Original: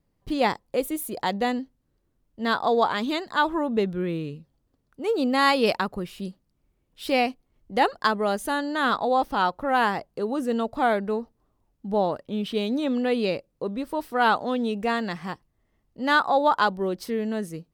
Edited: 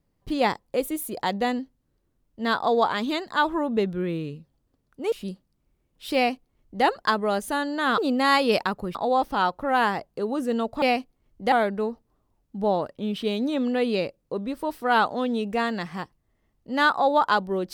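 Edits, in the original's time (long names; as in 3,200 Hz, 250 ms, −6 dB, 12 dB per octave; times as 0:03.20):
0:05.12–0:06.09: move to 0:08.95
0:07.12–0:07.82: duplicate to 0:10.82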